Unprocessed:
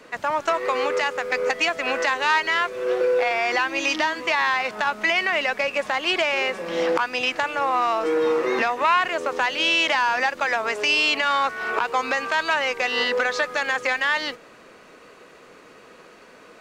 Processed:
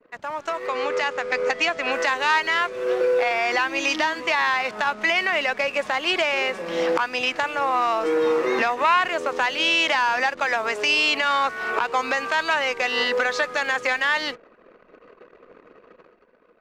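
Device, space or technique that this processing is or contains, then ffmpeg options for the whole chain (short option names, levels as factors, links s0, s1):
voice memo with heavy noise removal: -filter_complex "[0:a]asettb=1/sr,asplit=3[s0][s1][s2];[s0]atrim=end=0.674[s3];[s1]atrim=start=0.67:end=1.92,asetpts=PTS-STARTPTS,afade=t=in:d=0.004:c=qsin,afade=t=out:st=1.246:d=0.004:c=qsin,lowpass=7300[s4];[s2]atrim=start=1.916[s5];[s3][s4]acrossfade=d=0.004:c1=hsin:c2=qsin[s6];[s6][s5]acrossfade=d=0.004:c1=qsin:c2=hsin,anlmdn=0.0631,dynaudnorm=f=140:g=11:m=3.55,volume=0.447"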